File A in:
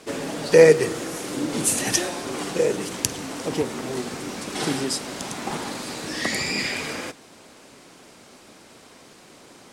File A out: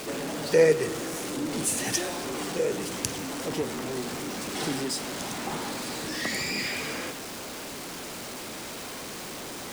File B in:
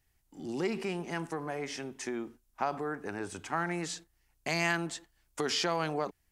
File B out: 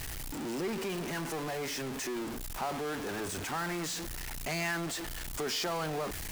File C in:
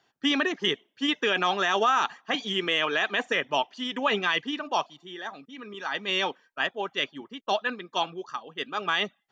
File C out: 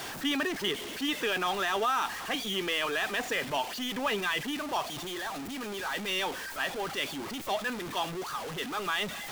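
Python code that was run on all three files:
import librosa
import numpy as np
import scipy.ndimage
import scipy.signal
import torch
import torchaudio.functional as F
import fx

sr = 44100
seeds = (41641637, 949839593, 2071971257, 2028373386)

y = x + 0.5 * 10.0 ** (-25.5 / 20.0) * np.sign(x)
y = y * 10.0 ** (-7.5 / 20.0)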